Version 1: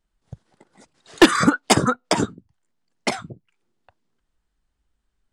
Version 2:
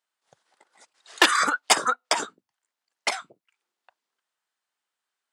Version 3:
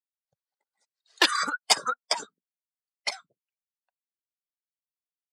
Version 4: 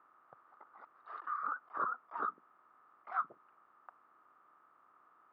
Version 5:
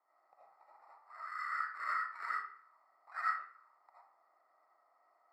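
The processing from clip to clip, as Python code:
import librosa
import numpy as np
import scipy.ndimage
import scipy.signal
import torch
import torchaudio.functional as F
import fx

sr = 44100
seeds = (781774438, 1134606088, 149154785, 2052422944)

y1 = scipy.signal.sosfilt(scipy.signal.butter(2, 800.0, 'highpass', fs=sr, output='sos'), x)
y2 = fx.bin_expand(y1, sr, power=1.5)
y2 = fx.peak_eq(y2, sr, hz=4600.0, db=8.0, octaves=0.54)
y2 = y2 * librosa.db_to_amplitude(-3.5)
y3 = fx.bin_compress(y2, sr, power=0.6)
y3 = fx.over_compress(y3, sr, threshold_db=-35.0, ratio=-1.0)
y3 = fx.ladder_lowpass(y3, sr, hz=1300.0, resonance_pct=80)
y3 = y3 * librosa.db_to_amplitude(-1.0)
y4 = fx.sample_hold(y3, sr, seeds[0], rate_hz=3200.0, jitter_pct=0)
y4 = fx.auto_wah(y4, sr, base_hz=680.0, top_hz=1500.0, q=3.7, full_db=-42.5, direction='up')
y4 = fx.rev_freeverb(y4, sr, rt60_s=0.54, hf_ratio=0.7, predelay_ms=40, drr_db=-8.0)
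y4 = y4 * librosa.db_to_amplitude(-3.5)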